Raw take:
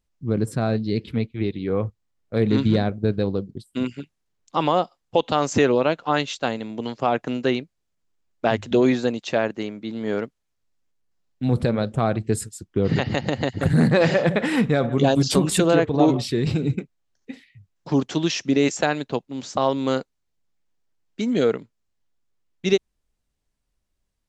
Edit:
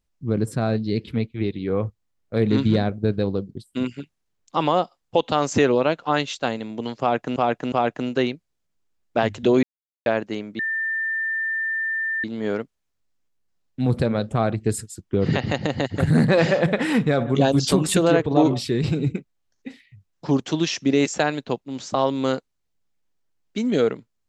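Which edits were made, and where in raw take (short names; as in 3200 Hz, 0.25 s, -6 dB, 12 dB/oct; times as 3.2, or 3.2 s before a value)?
7–7.36 loop, 3 plays
8.91–9.34 mute
9.87 add tone 1790 Hz -22 dBFS 1.65 s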